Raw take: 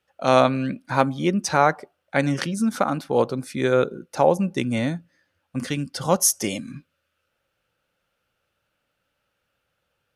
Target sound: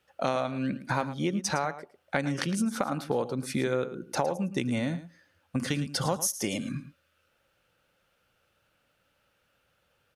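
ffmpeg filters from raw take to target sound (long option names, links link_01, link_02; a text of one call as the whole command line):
ffmpeg -i in.wav -af "acompressor=threshold=-29dB:ratio=8,aecho=1:1:110:0.211,volume=3.5dB" out.wav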